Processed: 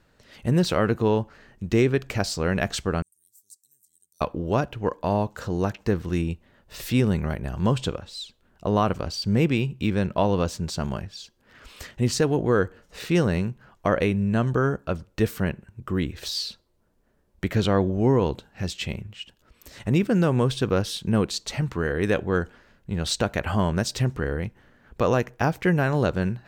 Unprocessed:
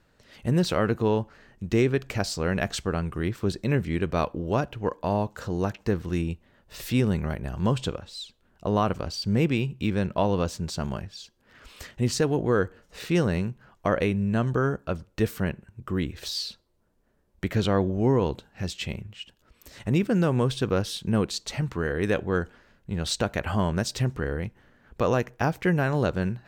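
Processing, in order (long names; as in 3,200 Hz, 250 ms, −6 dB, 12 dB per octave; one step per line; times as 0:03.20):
0:03.02–0:04.21: inverse Chebyshev high-pass filter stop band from 2,600 Hz, stop band 60 dB
level +2 dB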